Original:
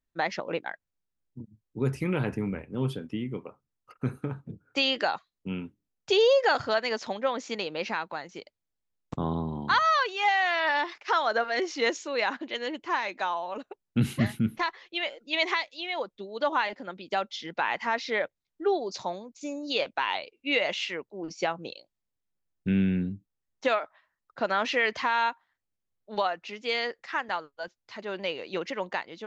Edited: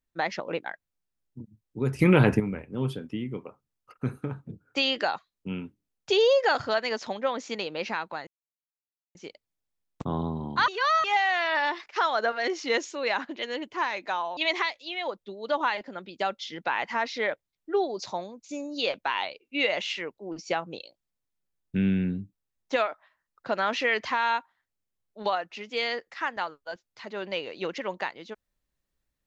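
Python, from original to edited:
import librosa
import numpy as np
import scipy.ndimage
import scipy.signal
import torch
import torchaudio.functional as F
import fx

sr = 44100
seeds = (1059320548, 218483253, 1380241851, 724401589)

y = fx.edit(x, sr, fx.clip_gain(start_s=1.99, length_s=0.41, db=9.5),
    fx.insert_silence(at_s=8.27, length_s=0.88),
    fx.reverse_span(start_s=9.8, length_s=0.36),
    fx.cut(start_s=13.49, length_s=1.8), tone=tone)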